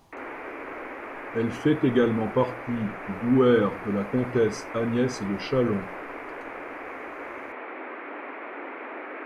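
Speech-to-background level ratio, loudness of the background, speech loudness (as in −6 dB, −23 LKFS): 11.5 dB, −37.0 LKFS, −25.5 LKFS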